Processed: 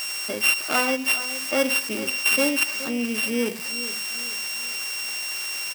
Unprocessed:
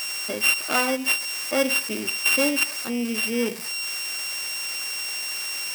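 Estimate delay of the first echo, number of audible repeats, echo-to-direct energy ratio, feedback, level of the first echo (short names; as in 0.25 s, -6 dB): 0.423 s, 3, -13.0 dB, 40%, -14.0 dB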